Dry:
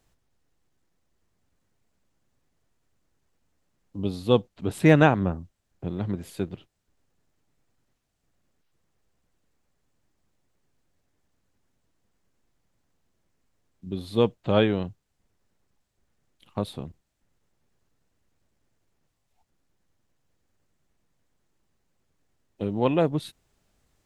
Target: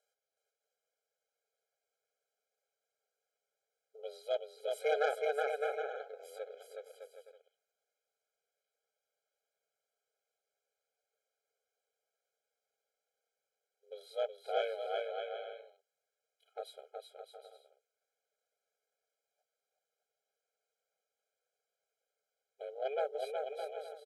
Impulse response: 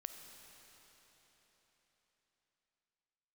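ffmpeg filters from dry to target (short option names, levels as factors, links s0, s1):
-filter_complex "[0:a]aeval=exprs='val(0)*sin(2*PI*140*n/s)':c=same,asplit=2[s0][s1];[s1]aecho=0:1:370|610.5|766.8|868.4|934.5:0.631|0.398|0.251|0.158|0.1[s2];[s0][s2]amix=inputs=2:normalize=0,asoftclip=type=tanh:threshold=0.266,afftfilt=real='re*eq(mod(floor(b*sr/1024/420),2),1)':imag='im*eq(mod(floor(b*sr/1024/420),2),1)':win_size=1024:overlap=0.75,volume=0.501"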